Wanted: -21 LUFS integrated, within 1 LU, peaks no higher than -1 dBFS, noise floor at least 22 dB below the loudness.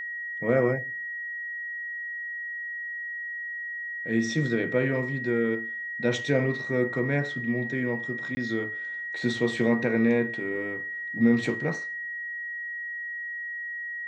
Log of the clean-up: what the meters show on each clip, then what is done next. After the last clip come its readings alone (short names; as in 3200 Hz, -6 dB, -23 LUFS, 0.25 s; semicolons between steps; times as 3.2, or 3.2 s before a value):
dropouts 1; longest dropout 20 ms; steady tone 1900 Hz; tone level -32 dBFS; loudness -28.5 LUFS; peak -10.5 dBFS; loudness target -21.0 LUFS
-> interpolate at 8.35, 20 ms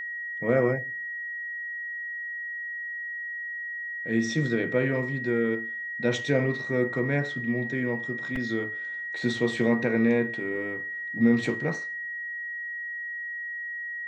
dropouts 0; steady tone 1900 Hz; tone level -32 dBFS
-> notch 1900 Hz, Q 30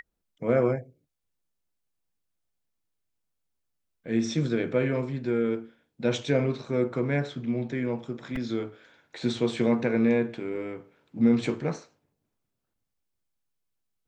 steady tone none; loudness -28.0 LUFS; peak -11.0 dBFS; loudness target -21.0 LUFS
-> gain +7 dB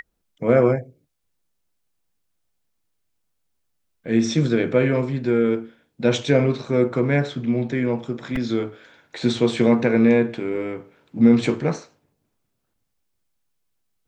loudness -21.0 LUFS; peak -4.0 dBFS; noise floor -74 dBFS